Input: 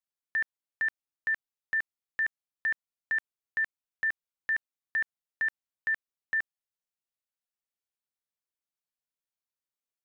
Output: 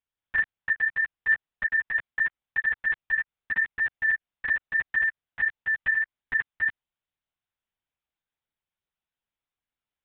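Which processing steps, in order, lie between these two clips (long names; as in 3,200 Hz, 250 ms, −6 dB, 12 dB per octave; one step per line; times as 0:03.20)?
delay that plays each chunk backwards 186 ms, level −0.5 dB
linear-prediction vocoder at 8 kHz whisper
level +3.5 dB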